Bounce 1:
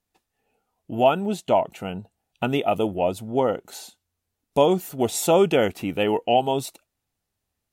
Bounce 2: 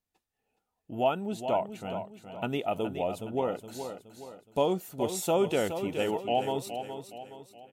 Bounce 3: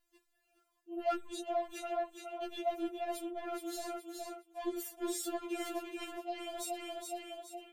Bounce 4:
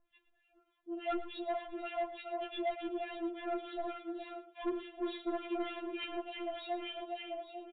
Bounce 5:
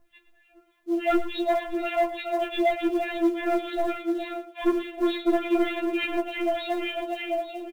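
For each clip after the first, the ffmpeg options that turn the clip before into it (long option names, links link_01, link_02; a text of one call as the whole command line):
ffmpeg -i in.wav -af "aecho=1:1:419|838|1257|1676|2095:0.355|0.153|0.0656|0.0282|0.0121,volume=-8.5dB" out.wav
ffmpeg -i in.wav -af "areverse,acompressor=threshold=-37dB:ratio=16,areverse,asoftclip=type=tanh:threshold=-37dB,afftfilt=real='re*4*eq(mod(b,16),0)':imag='im*4*eq(mod(b,16),0)':win_size=2048:overlap=0.75,volume=9dB" out.wav
ffmpeg -i in.wav -filter_complex "[0:a]acrossover=split=1300[link_01][link_02];[link_01]aeval=exprs='val(0)*(1-1/2+1/2*cos(2*PI*3.4*n/s))':channel_layout=same[link_03];[link_02]aeval=exprs='val(0)*(1-1/2-1/2*cos(2*PI*3.4*n/s))':channel_layout=same[link_04];[link_03][link_04]amix=inputs=2:normalize=0,aresample=8000,asoftclip=type=tanh:threshold=-37dB,aresample=44100,asplit=2[link_05][link_06];[link_06]adelay=110.8,volume=-13dB,highshelf=frequency=4000:gain=-2.49[link_07];[link_05][link_07]amix=inputs=2:normalize=0,volume=7.5dB" out.wav
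ffmpeg -i in.wav -filter_complex "[0:a]asplit=2[link_01][link_02];[link_02]acrusher=bits=4:mode=log:mix=0:aa=0.000001,volume=-8dB[link_03];[link_01][link_03]amix=inputs=2:normalize=0,asplit=2[link_04][link_05];[link_05]adelay=15,volume=-5dB[link_06];[link_04][link_06]amix=inputs=2:normalize=0,volume=9dB" out.wav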